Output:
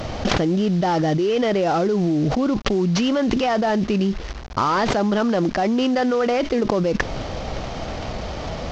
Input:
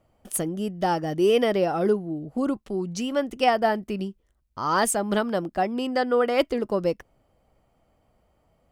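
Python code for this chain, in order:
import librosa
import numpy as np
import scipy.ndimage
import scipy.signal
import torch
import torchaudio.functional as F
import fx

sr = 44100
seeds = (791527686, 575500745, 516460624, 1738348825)

y = fx.cvsd(x, sr, bps=32000)
y = fx.env_flatten(y, sr, amount_pct=100)
y = y * 10.0 ** (-3.0 / 20.0)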